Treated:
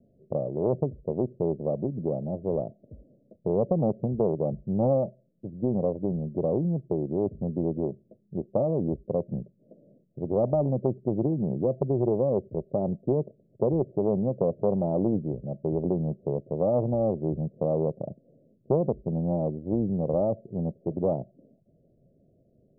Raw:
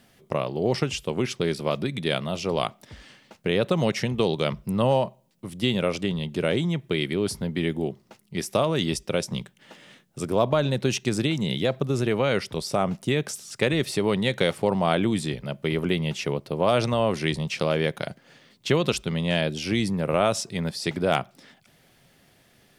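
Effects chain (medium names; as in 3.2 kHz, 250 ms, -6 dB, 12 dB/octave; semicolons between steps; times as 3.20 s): steep low-pass 650 Hz 96 dB/octave; 11.13–13.85 s: dynamic bell 370 Hz, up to +4 dB, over -41 dBFS, Q 7; loudspeaker Doppler distortion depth 0.37 ms; trim -1 dB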